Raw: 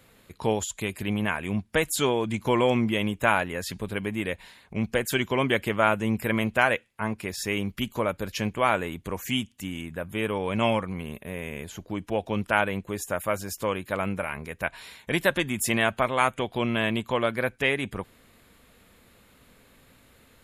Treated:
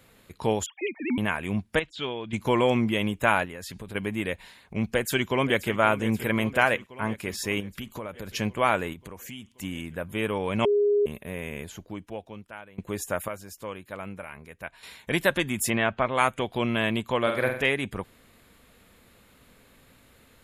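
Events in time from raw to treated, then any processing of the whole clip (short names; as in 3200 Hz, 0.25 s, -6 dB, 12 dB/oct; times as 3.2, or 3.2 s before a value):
0.66–1.18 sine-wave speech
1.79–2.33 ladder low-pass 4000 Hz, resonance 45%
3.45–3.95 compressor, threshold -35 dBFS
4.9–5.77 echo throw 0.53 s, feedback 70%, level -14 dB
6.36–6.86 upward compressor, threshold -28 dBFS
7.6–8.31 compressor 4:1, threshold -33 dBFS
8.93–9.52 compressor 4:1, threshold -39 dBFS
10.65–11.06 bleep 411 Hz -18.5 dBFS
11.61–12.78 fade out quadratic, to -22.5 dB
13.28–14.83 gain -9 dB
15.7–16.15 air absorption 190 m
17.22–17.66 flutter echo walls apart 8.1 m, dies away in 0.53 s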